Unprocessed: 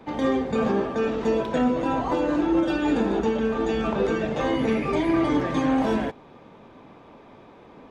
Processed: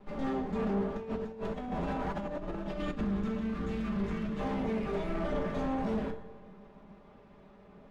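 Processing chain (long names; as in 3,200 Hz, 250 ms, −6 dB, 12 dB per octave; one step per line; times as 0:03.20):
lower of the sound and its delayed copy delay 4.9 ms
spectral tilt −1.5 dB per octave
tuned comb filter 150 Hz, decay 0.85 s, harmonics all, mix 60%
convolution reverb RT60 0.40 s, pre-delay 5 ms, DRR 2.5 dB
0:02.79–0:04.41: gain on a spectral selection 370–1,000 Hz −9 dB
low-shelf EQ 250 Hz +3 dB
delay with a low-pass on its return 81 ms, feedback 80%, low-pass 1,900 Hz, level −20.5 dB
0:00.97–0:03.01: compressor whose output falls as the input rises −30 dBFS, ratio −0.5
soft clipping −21.5 dBFS, distortion −15 dB
level −4 dB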